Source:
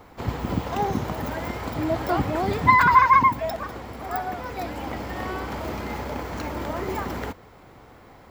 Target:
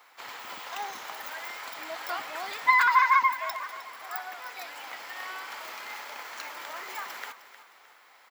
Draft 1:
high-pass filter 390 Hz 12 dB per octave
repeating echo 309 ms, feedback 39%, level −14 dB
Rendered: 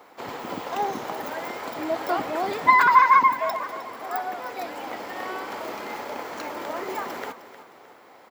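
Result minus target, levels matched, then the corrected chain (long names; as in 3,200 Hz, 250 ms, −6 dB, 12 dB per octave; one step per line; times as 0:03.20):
500 Hz band +9.5 dB
high-pass filter 1,400 Hz 12 dB per octave
repeating echo 309 ms, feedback 39%, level −14 dB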